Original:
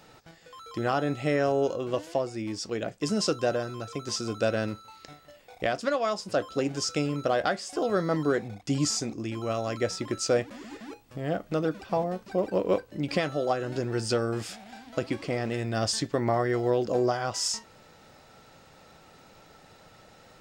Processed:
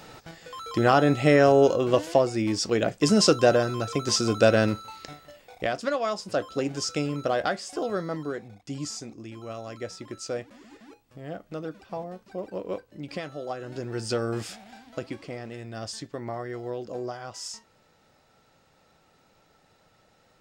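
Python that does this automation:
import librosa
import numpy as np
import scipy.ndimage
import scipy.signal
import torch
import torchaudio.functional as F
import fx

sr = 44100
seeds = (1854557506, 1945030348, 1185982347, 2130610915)

y = fx.gain(x, sr, db=fx.line((4.86, 7.5), (5.66, 0.0), (7.69, 0.0), (8.35, -7.5), (13.43, -7.5), (14.38, 1.0), (15.48, -8.5)))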